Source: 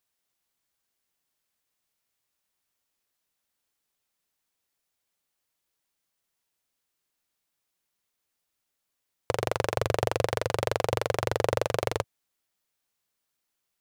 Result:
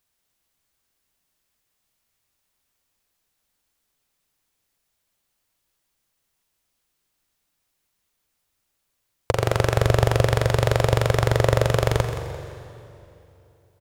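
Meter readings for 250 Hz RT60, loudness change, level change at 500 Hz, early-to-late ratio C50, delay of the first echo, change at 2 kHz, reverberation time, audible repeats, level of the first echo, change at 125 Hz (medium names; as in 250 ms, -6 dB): 3.3 s, +8.0 dB, +5.5 dB, 6.5 dB, 172 ms, +6.5 dB, 2.9 s, 2, -12.0 dB, +14.5 dB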